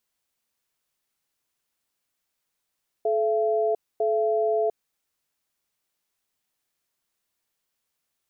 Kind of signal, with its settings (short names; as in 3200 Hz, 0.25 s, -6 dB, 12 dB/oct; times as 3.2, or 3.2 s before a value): cadence 432 Hz, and 675 Hz, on 0.70 s, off 0.25 s, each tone -23 dBFS 1.76 s